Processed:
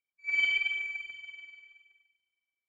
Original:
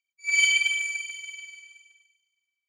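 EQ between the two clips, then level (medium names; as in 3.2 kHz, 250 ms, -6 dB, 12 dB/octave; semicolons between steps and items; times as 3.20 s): distance through air 460 m; 0.0 dB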